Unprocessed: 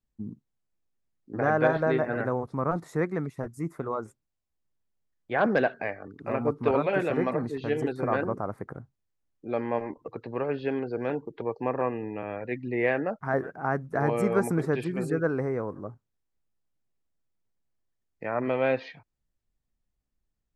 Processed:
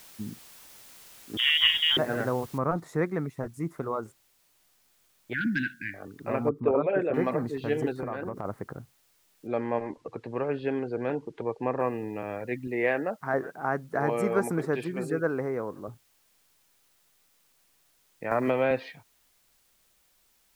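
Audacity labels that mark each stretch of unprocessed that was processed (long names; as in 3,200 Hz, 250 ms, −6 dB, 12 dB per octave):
1.370000	1.970000	voice inversion scrambler carrier 3,500 Hz
2.580000	2.580000	noise floor change −51 dB −67 dB
5.330000	5.940000	linear-phase brick-wall band-stop 340–1,400 Hz
6.490000	7.140000	spectral envelope exaggerated exponent 1.5
7.930000	8.450000	downward compressor, threshold −29 dBFS
9.470000	11.800000	high-frequency loss of the air 67 metres
12.670000	15.880000	high-pass filter 210 Hz 6 dB per octave
18.310000	18.710000	multiband upward and downward compressor depth 100%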